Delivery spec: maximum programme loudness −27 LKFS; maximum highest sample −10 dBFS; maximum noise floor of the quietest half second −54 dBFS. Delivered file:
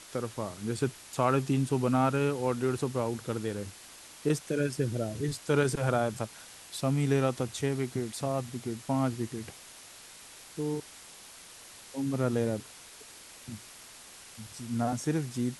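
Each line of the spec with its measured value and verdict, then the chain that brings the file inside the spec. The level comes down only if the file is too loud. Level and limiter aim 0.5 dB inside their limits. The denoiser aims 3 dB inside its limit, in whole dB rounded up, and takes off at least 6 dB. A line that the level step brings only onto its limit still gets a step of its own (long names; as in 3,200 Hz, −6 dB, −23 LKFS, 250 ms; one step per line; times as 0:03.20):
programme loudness −31.0 LKFS: in spec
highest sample −12.0 dBFS: in spec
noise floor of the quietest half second −50 dBFS: out of spec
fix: broadband denoise 7 dB, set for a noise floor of −50 dBFS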